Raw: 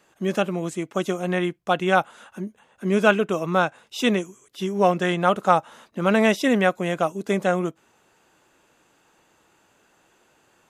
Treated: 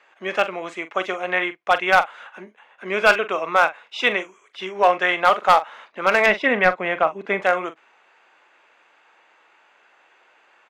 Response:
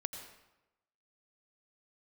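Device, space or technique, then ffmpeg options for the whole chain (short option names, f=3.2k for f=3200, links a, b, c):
megaphone: -filter_complex "[0:a]highpass=690,lowpass=2.9k,equalizer=f=2.2k:t=o:w=0.44:g=6,asoftclip=type=hard:threshold=-13.5dB,asplit=2[a][b];[b]adelay=43,volume=-12.5dB[c];[a][c]amix=inputs=2:normalize=0,asettb=1/sr,asplit=3[d][e][f];[d]atrim=end=6.264[g];[e]atrim=start=6.26:end=7.42,asetpts=PTS-STARTPTS,afade=t=in:d=0.004:c=qsin,afade=t=out:st=1.156:d=0.004:c=qsin,bass=f=250:g=10,treble=f=4k:g=-12[h];[f]atrim=start=7.416[i];[g][h]acrossfade=d=0.004:c1=hsin:c2=qsin[j];[j][i]acrossfade=d=0.004:c1=qsin:c2=hsin,volume=6.5dB"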